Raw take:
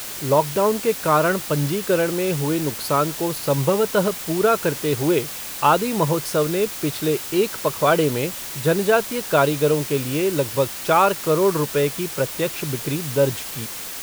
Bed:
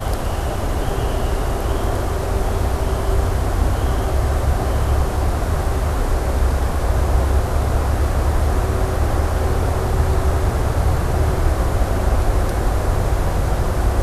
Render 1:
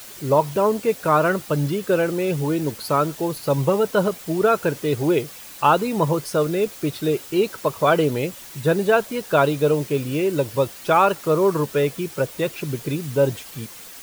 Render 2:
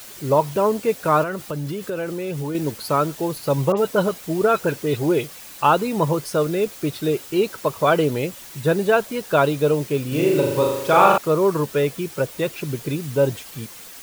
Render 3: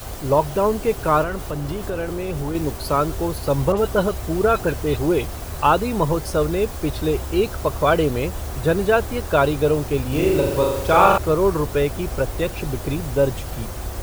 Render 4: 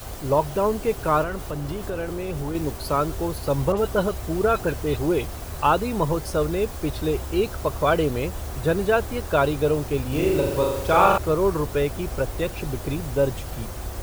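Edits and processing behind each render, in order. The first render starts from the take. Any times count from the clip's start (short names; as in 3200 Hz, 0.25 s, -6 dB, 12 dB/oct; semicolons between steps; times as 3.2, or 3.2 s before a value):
denoiser 9 dB, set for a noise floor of -32 dBFS
1.23–2.55 compressor 4:1, threshold -24 dBFS; 3.72–5.42 dispersion highs, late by 54 ms, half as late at 2900 Hz; 10.08–11.18 flutter echo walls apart 6.8 m, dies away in 0.88 s
add bed -12 dB
gain -3 dB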